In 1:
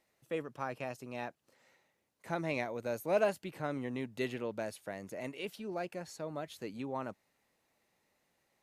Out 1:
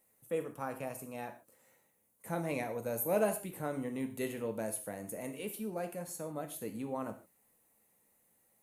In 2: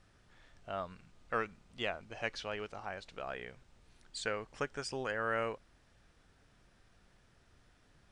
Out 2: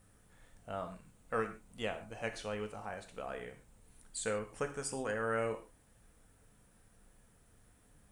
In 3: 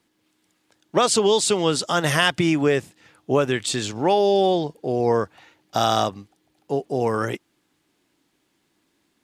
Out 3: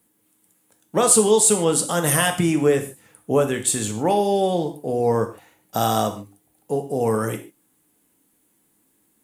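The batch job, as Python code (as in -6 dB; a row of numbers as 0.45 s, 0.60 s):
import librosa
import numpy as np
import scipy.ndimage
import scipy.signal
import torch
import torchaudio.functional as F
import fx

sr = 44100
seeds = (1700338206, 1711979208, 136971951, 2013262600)

y = fx.curve_eq(x, sr, hz=(430.0, 5100.0, 9800.0), db=(0, -7, 14))
y = fx.rev_gated(y, sr, seeds[0], gate_ms=170, shape='falling', drr_db=5.5)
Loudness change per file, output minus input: +0.5 LU, 0.0 LU, +1.5 LU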